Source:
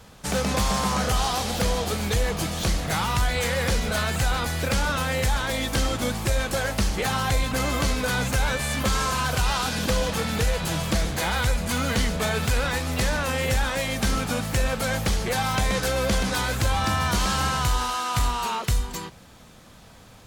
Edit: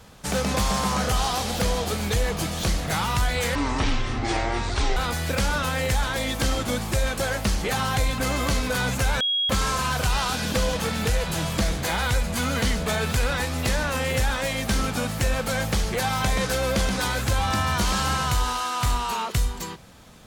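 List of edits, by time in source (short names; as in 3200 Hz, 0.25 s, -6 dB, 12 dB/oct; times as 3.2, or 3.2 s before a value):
3.55–4.3 speed 53%
8.54–8.83 bleep 3300 Hz -20.5 dBFS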